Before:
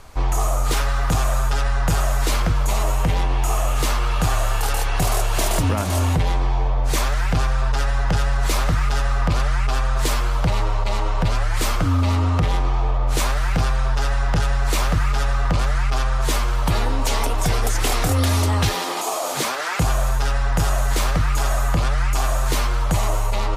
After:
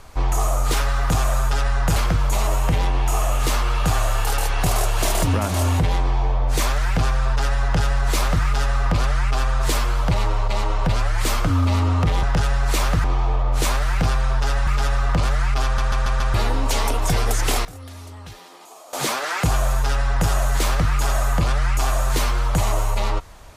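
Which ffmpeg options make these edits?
-filter_complex "[0:a]asplit=12[s0][s1][s2][s3][s4][s5][s6][s7][s8][s9][s10][s11];[s0]atrim=end=1.962[s12];[s1]atrim=start=2.318:end=12.592[s13];[s2]atrim=start=14.218:end=15.032[s14];[s3]atrim=start=12.588:end=14.222[s15];[s4]atrim=start=15.028:end=16.142[s16];[s5]atrim=start=15.998:end=16.142[s17];[s6]atrim=start=15.998:end=16.142[s18];[s7]atrim=start=15.998:end=16.142[s19];[s8]atrim=start=15.998:end=16.142[s20];[s9]atrim=start=16.698:end=18.01,asetpts=PTS-STARTPTS,afade=t=out:st=1.152:d=0.16:c=log:silence=0.105925[s21];[s10]atrim=start=18.01:end=19.29,asetpts=PTS-STARTPTS,volume=0.106[s22];[s11]atrim=start=19.29,asetpts=PTS-STARTPTS,afade=t=in:d=0.16:c=log:silence=0.105925[s23];[s12][s13]acrossfade=d=0.004:c1=hsin:c2=hsin[s24];[s24][s14]acrossfade=d=0.004:c1=hsin:c2=hsin[s25];[s25][s15]acrossfade=d=0.004:c1=hsin:c2=hsin[s26];[s26][s16]acrossfade=d=0.004:c1=hsin:c2=hsin[s27];[s27][s17]acrossfade=d=0.004:c1=hsin:c2=hsin[s28];[s28][s18]acrossfade=d=0.004:c1=hsin:c2=hsin[s29];[s29][s19]acrossfade=d=0.004:c1=hsin:c2=hsin[s30];[s30][s20]acrossfade=d=0.004:c1=hsin:c2=hsin[s31];[s21][s22][s23]concat=n=3:v=0:a=1[s32];[s31][s32]acrossfade=d=0.004:c1=hsin:c2=hsin"

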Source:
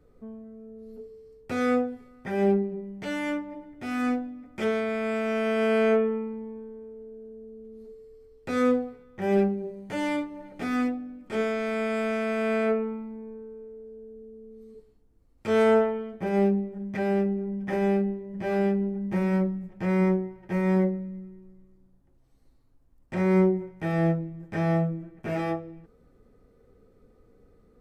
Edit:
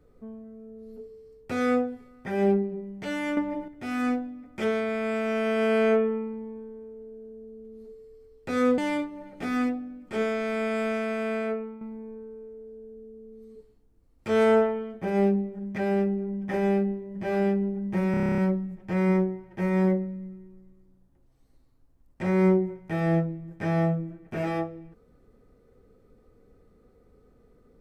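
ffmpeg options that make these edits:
-filter_complex "[0:a]asplit=14[s0][s1][s2][s3][s4][s5][s6][s7][s8][s9][s10][s11][s12][s13];[s0]atrim=end=3.372[s14];[s1]atrim=start=3.368:end=3.682,asetpts=PTS-STARTPTS,volume=2.51[s15];[s2]atrim=start=3.678:end=8.782[s16];[s3]atrim=start=9.968:end=13,asetpts=PTS-STARTPTS,afade=t=out:st=2.082:d=0.95:silence=0.354813[s17];[s4]atrim=start=13:end=19.332,asetpts=PTS-STARTPTS,afade=t=in:d=0.004:c=hsin:silence=0.354813[s18];[s5]atrim=start=19.298:end=19.332[s19];[s6]atrim=start=19.298:end=19.332[s20];[s7]atrim=start=19.298:end=19.332[s21];[s8]atrim=start=19.298:end=19.332[s22];[s9]atrim=start=19.298:end=19.332[s23];[s10]atrim=start=19.298:end=19.332[s24];[s11]atrim=start=19.298:end=19.332[s25];[s12]atrim=start=19.298:end=19.332[s26];[s13]atrim=start=19.298[s27];[s14][s15]acrossfade=d=0.004:c1=hsin:c2=hsin[s28];[s28][s16]acrossfade=d=0.004:c1=hsin:c2=hsin[s29];[s17][s18]concat=n=2:v=0:a=1[s30];[s29][s30]acrossfade=d=0.004:c1=hsin:c2=hsin[s31];[s31][s19]acrossfade=d=0.004:c1=hsin:c2=hsin[s32];[s32][s20]acrossfade=d=0.004:c1=hsin:c2=hsin[s33];[s33][s21]acrossfade=d=0.004:c1=hsin:c2=hsin[s34];[s34][s22]acrossfade=d=0.004:c1=hsin:c2=hsin[s35];[s35][s23]acrossfade=d=0.004:c1=hsin:c2=hsin[s36];[s36][s24]acrossfade=d=0.004:c1=hsin:c2=hsin[s37];[s37][s25]acrossfade=d=0.004:c1=hsin:c2=hsin[s38];[s38][s26]acrossfade=d=0.004:c1=hsin:c2=hsin[s39];[s39][s27]acrossfade=d=0.004:c1=hsin:c2=hsin"

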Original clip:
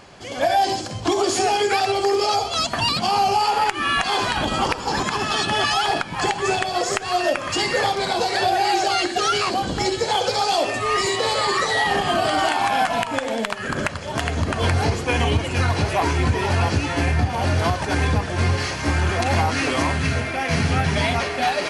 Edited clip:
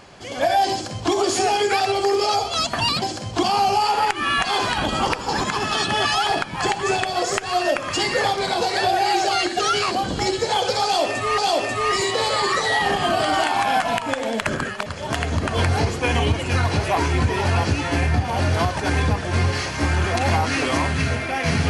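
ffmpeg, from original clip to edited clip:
-filter_complex "[0:a]asplit=6[s0][s1][s2][s3][s4][s5];[s0]atrim=end=3.022[s6];[s1]atrim=start=0.708:end=1.122[s7];[s2]atrim=start=3.018:end=10.972[s8];[s3]atrim=start=10.428:end=13.472[s9];[s4]atrim=start=13.468:end=13.912,asetpts=PTS-STARTPTS,areverse[s10];[s5]atrim=start=13.908[s11];[s6][s7]acrossfade=d=0.004:c1=hsin:c2=hsin[s12];[s12][s8]acrossfade=d=0.004:c1=hsin:c2=hsin[s13];[s13][s9]acrossfade=d=0.004:c1=hsin:c2=hsin[s14];[s14][s10]acrossfade=d=0.004:c1=hsin:c2=hsin[s15];[s15][s11]acrossfade=d=0.004:c1=hsin:c2=hsin"

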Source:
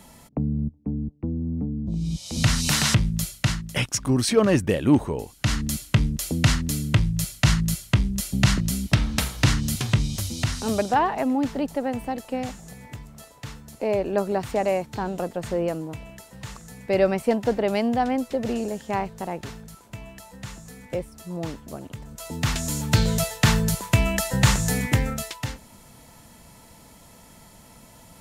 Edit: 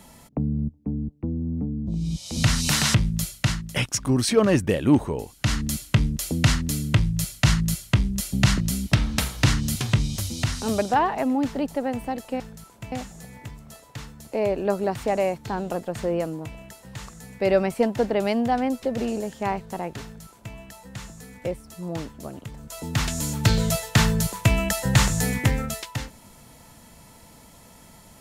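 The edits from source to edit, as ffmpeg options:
-filter_complex "[0:a]asplit=3[s0][s1][s2];[s0]atrim=end=12.402[s3];[s1]atrim=start=19.508:end=20.032[s4];[s2]atrim=start=12.398[s5];[s3][s4]acrossfade=d=0.004:c1=hsin:c2=hsin[s6];[s6][s5]acrossfade=d=0.004:c1=hsin:c2=hsin"

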